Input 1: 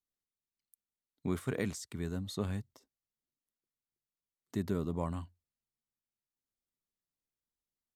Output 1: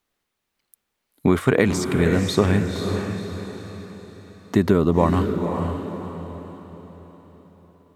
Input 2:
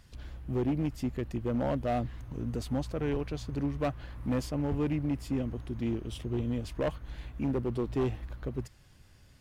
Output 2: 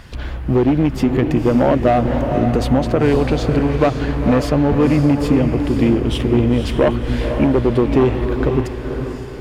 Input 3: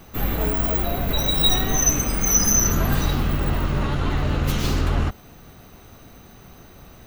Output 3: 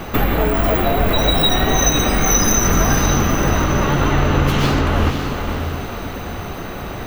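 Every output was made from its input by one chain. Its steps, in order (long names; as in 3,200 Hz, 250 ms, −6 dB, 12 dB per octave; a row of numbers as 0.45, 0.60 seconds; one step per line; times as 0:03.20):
bass and treble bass −5 dB, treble −10 dB
downward compressor 4 to 1, threshold −34 dBFS
on a send: feedback delay with all-pass diffusion 521 ms, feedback 43%, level −6 dB
on the sum: normalise the peak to −2 dBFS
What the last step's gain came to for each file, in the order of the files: +22.0, +22.0, +19.0 decibels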